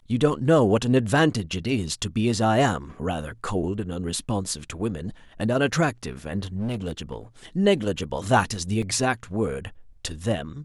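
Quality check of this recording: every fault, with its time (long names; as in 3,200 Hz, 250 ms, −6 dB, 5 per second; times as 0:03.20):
0:06.56–0:07.16: clipping −23.5 dBFS
0:08.82: drop-out 4.8 ms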